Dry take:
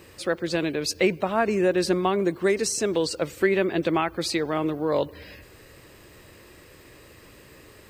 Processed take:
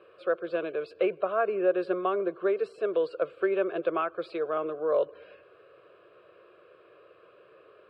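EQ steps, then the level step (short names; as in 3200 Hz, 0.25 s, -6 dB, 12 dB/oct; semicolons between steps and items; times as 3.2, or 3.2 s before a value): Butterworth band-pass 750 Hz, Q 0.51; fixed phaser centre 1300 Hz, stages 8; 0.0 dB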